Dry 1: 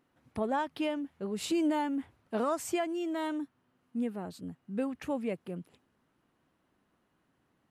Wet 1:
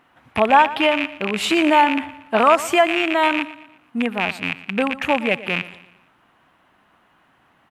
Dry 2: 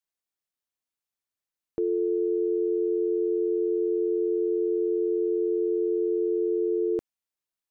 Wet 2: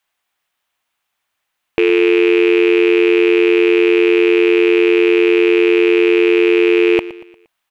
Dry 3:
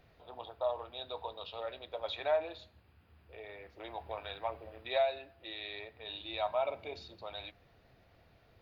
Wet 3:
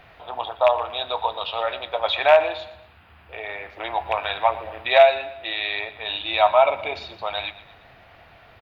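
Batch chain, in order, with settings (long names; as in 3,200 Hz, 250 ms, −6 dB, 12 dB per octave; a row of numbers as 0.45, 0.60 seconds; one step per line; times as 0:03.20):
loose part that buzzes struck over −45 dBFS, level −29 dBFS
flat-topped bell 1,500 Hz +10 dB 2.7 octaves
repeating echo 117 ms, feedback 43%, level −16.5 dB
normalise the peak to −1.5 dBFS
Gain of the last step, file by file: +9.5, +12.5, +9.0 decibels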